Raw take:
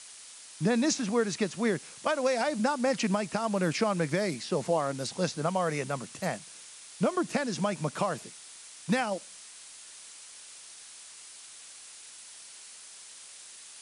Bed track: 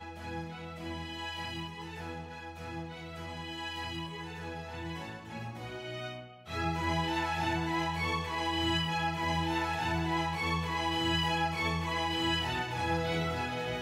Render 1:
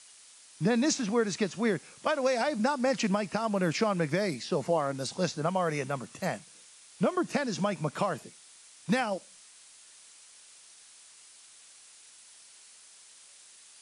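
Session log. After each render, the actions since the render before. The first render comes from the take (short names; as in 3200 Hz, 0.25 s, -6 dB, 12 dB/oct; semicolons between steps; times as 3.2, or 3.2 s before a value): noise print and reduce 6 dB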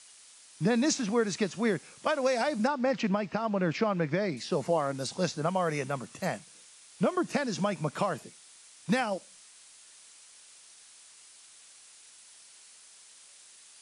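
2.67–4.37 air absorption 150 m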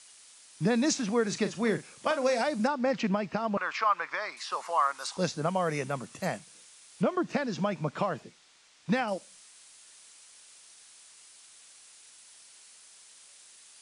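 1.22–2.41 doubler 40 ms -11 dB; 3.57–5.17 resonant high-pass 1100 Hz, resonance Q 3.8; 7.02–9.08 air absorption 98 m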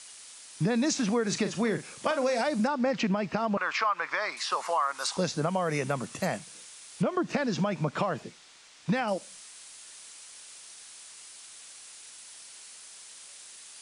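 in parallel at +0.5 dB: limiter -22 dBFS, peak gain reduction 7.5 dB; on the sum: compressor 3:1, threshold -25 dBFS, peak gain reduction 6.5 dB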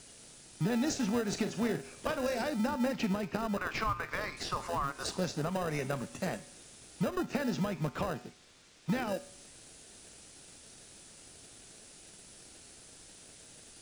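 resonator 81 Hz, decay 0.62 s, harmonics odd, mix 60%; in parallel at -5.5 dB: sample-and-hold 40×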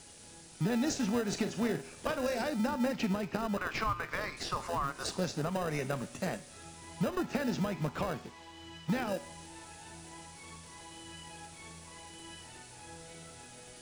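add bed track -19.5 dB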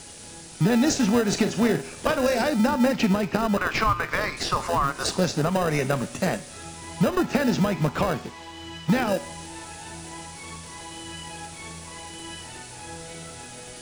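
gain +10.5 dB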